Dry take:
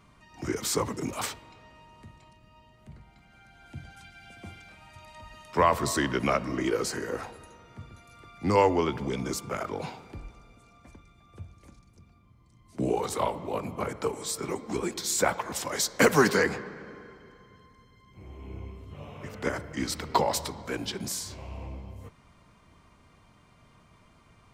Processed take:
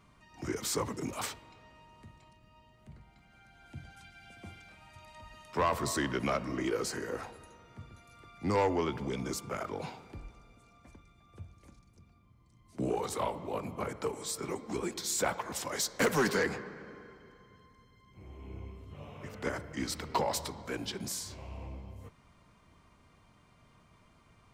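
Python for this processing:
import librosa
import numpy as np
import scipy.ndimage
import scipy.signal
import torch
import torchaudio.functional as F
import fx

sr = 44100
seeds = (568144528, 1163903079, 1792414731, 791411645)

y = 10.0 ** (-17.0 / 20.0) * np.tanh(x / 10.0 ** (-17.0 / 20.0))
y = y * 10.0 ** (-4.0 / 20.0)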